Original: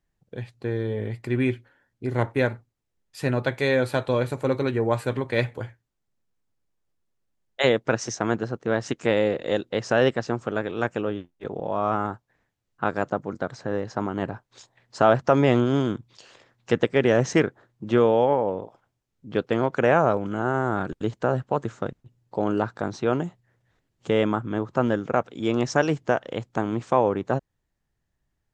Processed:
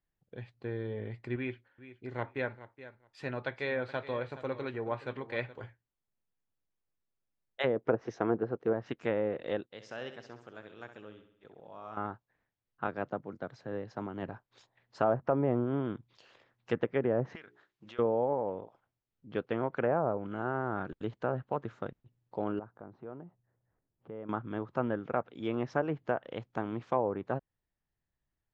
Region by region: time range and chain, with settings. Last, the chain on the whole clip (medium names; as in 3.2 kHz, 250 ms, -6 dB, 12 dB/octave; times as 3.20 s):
1.36–5.64 s: bass shelf 460 Hz -6 dB + feedback delay 422 ms, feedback 15%, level -15 dB
7.76–8.73 s: peaking EQ 440 Hz +8 dB 1.3 oct + band-stop 580 Hz, Q 9.1
9.66–11.97 s: pre-emphasis filter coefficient 0.8 + feedback delay 66 ms, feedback 53%, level -10 dB
12.87–14.29 s: peaking EQ 1.2 kHz -3.5 dB 1.5 oct + three bands expanded up and down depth 40%
17.35–17.99 s: tilt shelf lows -10 dB, about 1.1 kHz + hum notches 60/120/180/240/300/360/420 Hz + compression 5:1, threshold -38 dBFS
22.59–24.29 s: low-pass 1.1 kHz + compression 1.5:1, threshold -51 dBFS
whole clip: bass shelf 480 Hz -2.5 dB; low-pass that closes with the level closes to 940 Hz, closed at -16.5 dBFS; low-pass 3.8 kHz 12 dB/octave; trim -8 dB